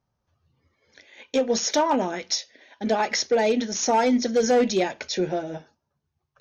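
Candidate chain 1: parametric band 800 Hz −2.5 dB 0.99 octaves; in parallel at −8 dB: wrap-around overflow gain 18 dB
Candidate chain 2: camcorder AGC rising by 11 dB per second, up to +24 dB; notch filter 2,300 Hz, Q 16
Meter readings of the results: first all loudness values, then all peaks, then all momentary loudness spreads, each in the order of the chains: −23.0, −23.5 LKFS; −14.5, −5.5 dBFS; 8, 13 LU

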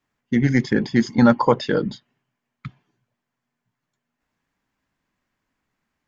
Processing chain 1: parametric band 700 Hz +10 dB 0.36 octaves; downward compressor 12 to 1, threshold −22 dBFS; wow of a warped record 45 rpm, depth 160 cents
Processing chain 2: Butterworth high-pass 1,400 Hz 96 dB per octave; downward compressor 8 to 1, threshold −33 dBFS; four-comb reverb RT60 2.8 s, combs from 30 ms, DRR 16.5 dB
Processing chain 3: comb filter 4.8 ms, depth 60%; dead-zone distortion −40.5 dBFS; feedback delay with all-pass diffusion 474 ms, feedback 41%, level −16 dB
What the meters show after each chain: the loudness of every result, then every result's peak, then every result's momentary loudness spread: −28.5, −38.0, −18.0 LKFS; −10.0, −22.0, −2.0 dBFS; 14, 15, 21 LU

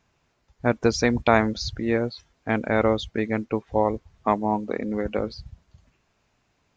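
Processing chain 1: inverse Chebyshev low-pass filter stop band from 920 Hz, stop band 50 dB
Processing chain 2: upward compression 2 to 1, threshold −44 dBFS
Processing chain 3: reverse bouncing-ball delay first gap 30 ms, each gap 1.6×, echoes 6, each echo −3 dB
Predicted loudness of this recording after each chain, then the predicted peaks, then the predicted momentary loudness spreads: −29.5, −25.0, −22.0 LKFS; −12.5, −4.0, −3.5 dBFS; 10, 8, 9 LU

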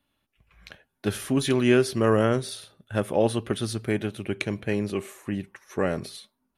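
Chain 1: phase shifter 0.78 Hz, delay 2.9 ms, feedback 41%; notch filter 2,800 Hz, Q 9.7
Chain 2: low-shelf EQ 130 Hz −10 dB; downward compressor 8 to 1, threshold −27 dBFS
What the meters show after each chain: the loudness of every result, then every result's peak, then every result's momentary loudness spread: −25.5, −34.0 LKFS; −8.5, −11.0 dBFS; 13, 10 LU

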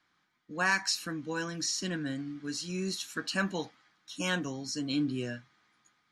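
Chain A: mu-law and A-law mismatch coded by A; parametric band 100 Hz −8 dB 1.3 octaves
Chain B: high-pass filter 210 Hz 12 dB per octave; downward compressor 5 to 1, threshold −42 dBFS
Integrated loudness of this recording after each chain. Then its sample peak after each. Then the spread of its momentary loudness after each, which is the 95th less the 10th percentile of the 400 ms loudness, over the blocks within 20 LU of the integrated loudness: −35.0, −44.0 LKFS; −16.5, −29.0 dBFS; 12, 7 LU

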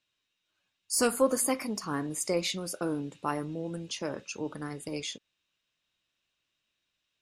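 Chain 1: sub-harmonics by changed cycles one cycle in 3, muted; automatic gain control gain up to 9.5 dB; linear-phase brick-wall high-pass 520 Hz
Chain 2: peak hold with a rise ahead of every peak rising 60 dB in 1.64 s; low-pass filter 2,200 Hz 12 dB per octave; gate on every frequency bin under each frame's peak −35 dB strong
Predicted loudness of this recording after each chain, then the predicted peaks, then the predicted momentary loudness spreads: −26.0, −30.0 LKFS; −6.5, −12.5 dBFS; 14, 12 LU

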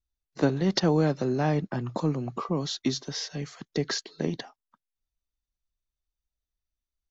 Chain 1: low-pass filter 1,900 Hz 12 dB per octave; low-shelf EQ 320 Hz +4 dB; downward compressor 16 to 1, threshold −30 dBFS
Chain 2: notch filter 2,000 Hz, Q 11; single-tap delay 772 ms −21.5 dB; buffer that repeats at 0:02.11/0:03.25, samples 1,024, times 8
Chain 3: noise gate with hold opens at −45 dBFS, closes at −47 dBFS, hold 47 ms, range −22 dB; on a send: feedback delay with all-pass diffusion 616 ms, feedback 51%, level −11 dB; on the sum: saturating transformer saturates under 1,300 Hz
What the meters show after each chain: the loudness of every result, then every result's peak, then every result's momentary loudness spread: −37.0, −28.5, −31.5 LKFS; −17.0, −10.0, −10.5 dBFS; 6, 10, 19 LU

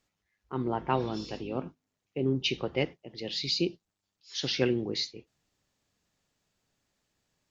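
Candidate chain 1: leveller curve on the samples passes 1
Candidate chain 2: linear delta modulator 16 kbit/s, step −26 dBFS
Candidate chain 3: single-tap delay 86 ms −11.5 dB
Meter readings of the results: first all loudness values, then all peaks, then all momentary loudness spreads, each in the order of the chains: −28.5, −31.0, −31.5 LKFS; −12.0, −12.5, −12.0 dBFS; 10, 4, 11 LU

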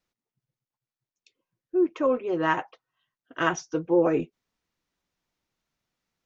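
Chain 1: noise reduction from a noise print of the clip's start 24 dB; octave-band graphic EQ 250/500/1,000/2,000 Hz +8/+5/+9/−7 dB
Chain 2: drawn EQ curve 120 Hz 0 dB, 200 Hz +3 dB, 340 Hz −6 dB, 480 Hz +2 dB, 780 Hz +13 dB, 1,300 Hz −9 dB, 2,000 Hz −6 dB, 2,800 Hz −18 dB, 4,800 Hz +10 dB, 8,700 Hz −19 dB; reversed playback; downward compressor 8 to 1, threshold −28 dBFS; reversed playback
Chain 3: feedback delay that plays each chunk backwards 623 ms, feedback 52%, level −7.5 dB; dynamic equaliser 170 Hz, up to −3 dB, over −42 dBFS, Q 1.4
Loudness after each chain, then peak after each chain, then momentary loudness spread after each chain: −18.5, −34.0, −27.5 LKFS; −4.5, −18.5, −9.5 dBFS; 8, 8, 18 LU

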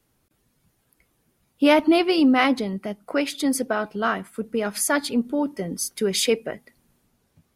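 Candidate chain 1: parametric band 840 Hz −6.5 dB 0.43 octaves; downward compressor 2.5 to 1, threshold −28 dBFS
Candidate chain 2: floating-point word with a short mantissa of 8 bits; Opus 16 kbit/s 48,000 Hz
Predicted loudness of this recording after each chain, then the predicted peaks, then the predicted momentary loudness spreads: −29.5, −23.0 LKFS; −16.0, −6.0 dBFS; 7, 12 LU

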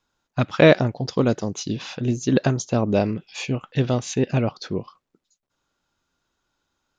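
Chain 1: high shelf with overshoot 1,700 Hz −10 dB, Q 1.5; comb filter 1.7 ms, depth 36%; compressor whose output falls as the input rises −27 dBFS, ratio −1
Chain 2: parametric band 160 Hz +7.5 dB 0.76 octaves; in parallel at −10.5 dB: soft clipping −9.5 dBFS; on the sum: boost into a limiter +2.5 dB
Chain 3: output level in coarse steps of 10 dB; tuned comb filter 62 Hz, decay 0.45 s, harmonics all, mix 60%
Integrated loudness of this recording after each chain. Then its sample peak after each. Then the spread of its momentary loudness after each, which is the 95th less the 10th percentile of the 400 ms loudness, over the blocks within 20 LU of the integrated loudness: −28.5, −16.5, −31.5 LKFS; −11.0, −1.0, −12.0 dBFS; 4, 10, 13 LU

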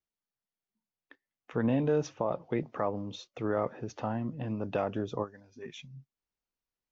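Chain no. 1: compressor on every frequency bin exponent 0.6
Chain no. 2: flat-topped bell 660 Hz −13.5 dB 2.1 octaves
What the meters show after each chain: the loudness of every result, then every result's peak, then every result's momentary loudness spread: −30.5, −38.0 LKFS; −13.5, −21.0 dBFS; 13, 16 LU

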